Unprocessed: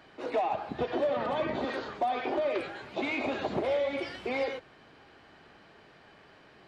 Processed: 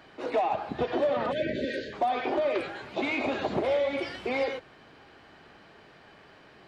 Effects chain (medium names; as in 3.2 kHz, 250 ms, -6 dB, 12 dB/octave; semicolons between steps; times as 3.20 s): spectral selection erased 1.32–1.93 s, 630–1500 Hz; trim +2.5 dB